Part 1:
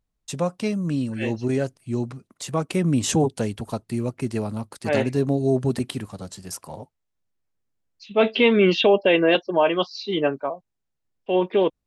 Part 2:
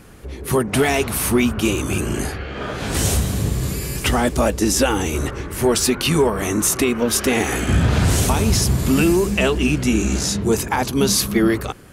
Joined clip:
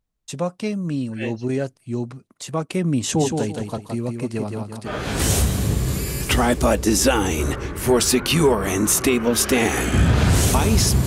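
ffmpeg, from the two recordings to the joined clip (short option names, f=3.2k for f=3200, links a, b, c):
-filter_complex "[0:a]asplit=3[a][b][c];[a]afade=t=out:st=3.17:d=0.02[d];[b]aecho=1:1:169|338|507|676:0.562|0.163|0.0473|0.0137,afade=t=in:st=3.17:d=0.02,afade=t=out:st=4.93:d=0.02[e];[c]afade=t=in:st=4.93:d=0.02[f];[d][e][f]amix=inputs=3:normalize=0,apad=whole_dur=11.06,atrim=end=11.06,atrim=end=4.93,asetpts=PTS-STARTPTS[g];[1:a]atrim=start=2.58:end=8.81,asetpts=PTS-STARTPTS[h];[g][h]acrossfade=d=0.1:c1=tri:c2=tri"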